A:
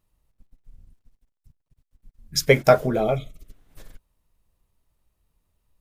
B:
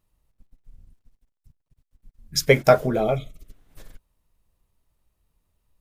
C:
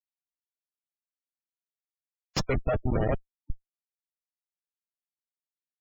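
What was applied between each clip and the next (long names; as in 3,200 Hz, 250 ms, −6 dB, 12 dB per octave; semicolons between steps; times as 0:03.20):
no processing that can be heard
feedback delay with all-pass diffusion 953 ms, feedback 40%, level −15.5 dB; comparator with hysteresis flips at −20 dBFS; gate on every frequency bin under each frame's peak −20 dB strong; level +3 dB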